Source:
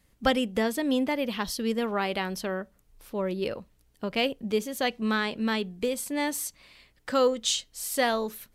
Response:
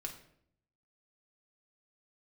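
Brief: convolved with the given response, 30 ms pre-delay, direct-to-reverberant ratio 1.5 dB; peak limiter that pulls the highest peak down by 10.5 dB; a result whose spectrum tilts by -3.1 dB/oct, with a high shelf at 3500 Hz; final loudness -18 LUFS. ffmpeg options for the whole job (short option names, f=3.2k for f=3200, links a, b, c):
-filter_complex "[0:a]highshelf=f=3.5k:g=8,alimiter=limit=-19dB:level=0:latency=1,asplit=2[a][b];[1:a]atrim=start_sample=2205,adelay=30[c];[b][c]afir=irnorm=-1:irlink=0,volume=0dB[d];[a][d]amix=inputs=2:normalize=0,volume=10dB"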